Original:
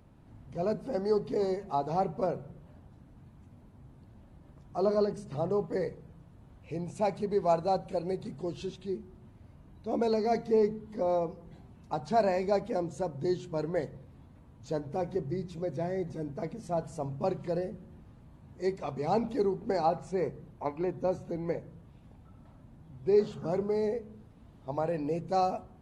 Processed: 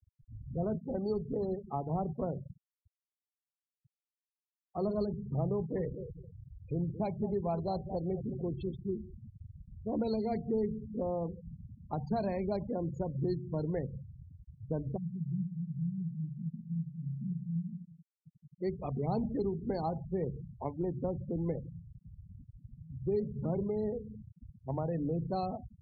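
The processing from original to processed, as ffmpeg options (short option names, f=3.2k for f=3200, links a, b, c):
-filter_complex "[0:a]asettb=1/sr,asplit=3[a][b][c];[a]atrim=end=0.784[d];[b]atrim=start=0.78:end=4.79,asetpts=PTS-STARTPTS,afade=t=in:d=0.004:c=qsin,afade=t=out:st=4.006:d=0.004:c=qsin,aeval=exprs='sgn(val(0))*max(abs(val(0))-0.00266,0)':c=same[e];[c]atrim=start=4.786[f];[d][e]acrossfade=d=0.004:c1=hsin:c2=qsin[g];[g][f]acrossfade=d=0.004:c1=qsin:c2=hsin,asettb=1/sr,asplit=3[h][i][j];[h]atrim=end=5.544[k];[i]atrim=start=5.54:end=9,asetpts=PTS-STARTPTS,afade=t=in:d=0.004:c=qsin,afade=t=out:st=3.456:d=0.004:c=qsin,aecho=1:1:218|436|654:0.211|0.0592|0.0166,atrim=end_sample=152586[l];[j]atrim=start=8.996[m];[k][l]acrossfade=d=0.004:c1=hsin:c2=qsin[n];[n][m]acrossfade=d=0.004:c1=qsin:c2=hsin,asplit=3[o][p][q];[o]afade=t=out:st=14.96:d=0.02[r];[p]asuperpass=centerf=170:order=4:qfactor=2.8,afade=t=in:st=14.96:d=0.02,afade=t=out:st=18.6:d=0.02[s];[q]afade=t=in:st=18.6:d=0.02[t];[r][s][t]amix=inputs=3:normalize=0,afftfilt=real='re*gte(hypot(re,im),0.0158)':imag='im*gte(hypot(re,im),0.0158)':win_size=1024:overlap=0.75,lowshelf=f=280:g=11,acrossover=split=180|3000[u][v][w];[v]acompressor=threshold=-32dB:ratio=2.5[x];[u][x][w]amix=inputs=3:normalize=0,volume=-3dB"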